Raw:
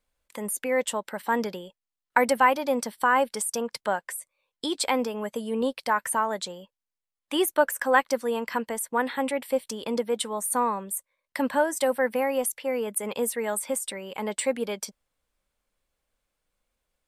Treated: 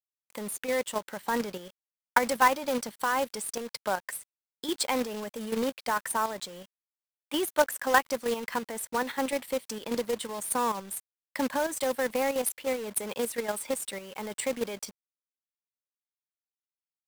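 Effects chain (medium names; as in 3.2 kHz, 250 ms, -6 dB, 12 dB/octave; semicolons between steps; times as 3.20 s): level held to a coarse grid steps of 9 dB; companded quantiser 4-bit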